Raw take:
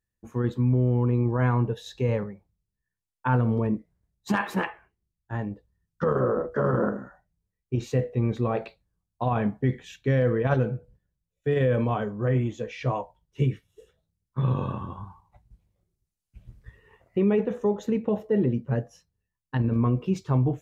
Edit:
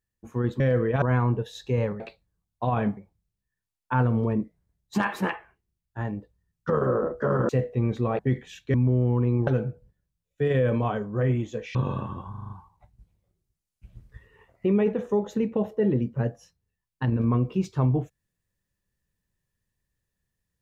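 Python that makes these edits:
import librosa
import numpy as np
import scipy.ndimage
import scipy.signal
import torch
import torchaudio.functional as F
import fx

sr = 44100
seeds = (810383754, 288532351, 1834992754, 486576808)

y = fx.edit(x, sr, fx.swap(start_s=0.6, length_s=0.73, other_s=10.11, other_length_s=0.42),
    fx.cut(start_s=6.83, length_s=1.06),
    fx.move(start_s=8.59, length_s=0.97, to_s=2.31),
    fx.cut(start_s=12.81, length_s=1.66),
    fx.stutter(start_s=15.02, slice_s=0.04, count=6), tone=tone)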